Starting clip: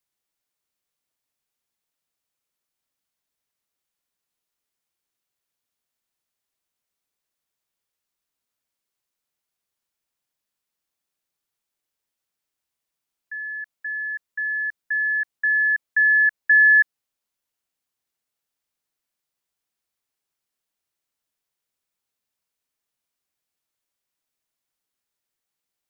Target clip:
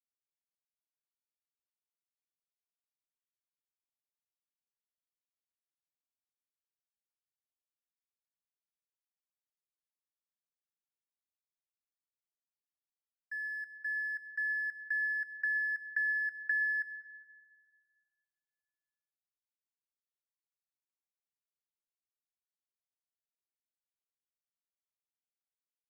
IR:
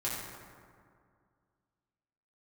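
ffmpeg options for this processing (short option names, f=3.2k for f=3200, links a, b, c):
-filter_complex "[0:a]acompressor=threshold=-25dB:ratio=6,aeval=exprs='sgn(val(0))*max(abs(val(0))-0.0015,0)':c=same,asplit=2[a][b];[1:a]atrim=start_sample=2205,adelay=94[c];[b][c]afir=irnorm=-1:irlink=0,volume=-16.5dB[d];[a][d]amix=inputs=2:normalize=0,volume=-6.5dB"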